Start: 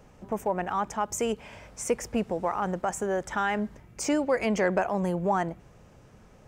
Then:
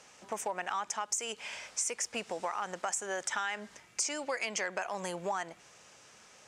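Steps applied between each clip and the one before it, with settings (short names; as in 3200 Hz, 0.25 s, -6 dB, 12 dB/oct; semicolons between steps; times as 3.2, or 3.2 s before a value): weighting filter ITU-R 468; compressor 6:1, threshold -31 dBFS, peak gain reduction 12.5 dB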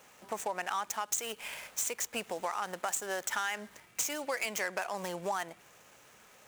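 median filter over 9 samples; high shelf 4200 Hz +10.5 dB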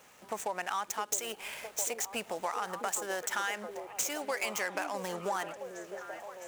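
delay with a stepping band-pass 0.662 s, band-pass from 350 Hz, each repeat 0.7 oct, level -3 dB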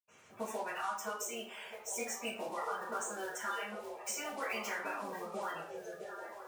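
bin magnitudes rounded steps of 30 dB; tremolo saw down 0.55 Hz, depth 30%; reverb RT60 0.50 s, pre-delay 76 ms; gain +11 dB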